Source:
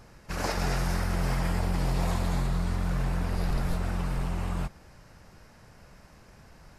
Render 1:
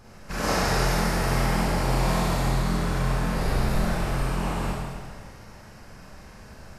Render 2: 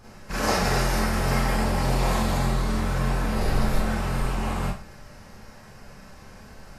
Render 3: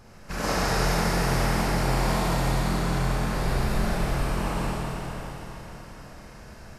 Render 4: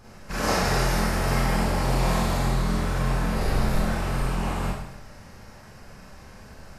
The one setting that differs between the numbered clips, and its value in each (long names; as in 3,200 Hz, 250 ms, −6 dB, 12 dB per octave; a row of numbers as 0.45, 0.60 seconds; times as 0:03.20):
four-comb reverb, RT60: 1.7, 0.33, 4.2, 0.76 seconds